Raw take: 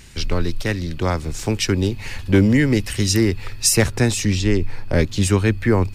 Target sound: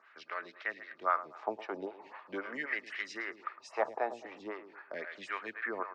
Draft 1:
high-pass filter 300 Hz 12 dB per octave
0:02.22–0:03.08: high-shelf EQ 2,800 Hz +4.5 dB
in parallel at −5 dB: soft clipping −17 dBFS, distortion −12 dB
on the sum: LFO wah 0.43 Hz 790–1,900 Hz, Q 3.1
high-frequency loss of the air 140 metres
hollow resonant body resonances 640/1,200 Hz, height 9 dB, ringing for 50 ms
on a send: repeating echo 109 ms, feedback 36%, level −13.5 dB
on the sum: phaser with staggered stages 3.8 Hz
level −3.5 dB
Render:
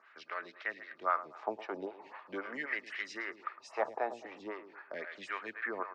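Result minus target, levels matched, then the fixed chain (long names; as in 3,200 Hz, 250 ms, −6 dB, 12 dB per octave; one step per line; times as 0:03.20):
soft clipping: distortion +16 dB
high-pass filter 300 Hz 12 dB per octave
0:02.22–0:03.08: high-shelf EQ 2,800 Hz +4.5 dB
in parallel at −5 dB: soft clipping −5.5 dBFS, distortion −28 dB
on the sum: LFO wah 0.43 Hz 790–1,900 Hz, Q 3.1
high-frequency loss of the air 140 metres
hollow resonant body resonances 640/1,200 Hz, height 9 dB, ringing for 50 ms
on a send: repeating echo 109 ms, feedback 36%, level −13.5 dB
on the sum: phaser with staggered stages 3.8 Hz
level −3.5 dB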